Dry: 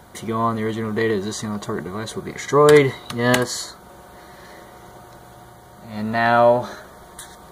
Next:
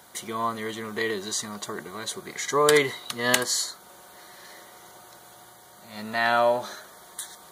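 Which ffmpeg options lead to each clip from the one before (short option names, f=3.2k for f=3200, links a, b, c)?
-af "highpass=f=290:p=1,highshelf=f=2.1k:g=11,volume=-7.5dB"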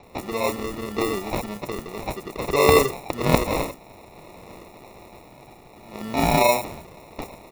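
-filter_complex "[0:a]acrusher=samples=28:mix=1:aa=0.000001,acrossover=split=5900[a][b];[b]adelay=30[c];[a][c]amix=inputs=2:normalize=0,volume=3.5dB"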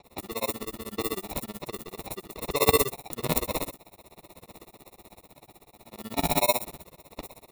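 -af "aexciter=amount=2.5:drive=1.5:freq=3.2k,tremolo=f=16:d=0.99,volume=-3.5dB"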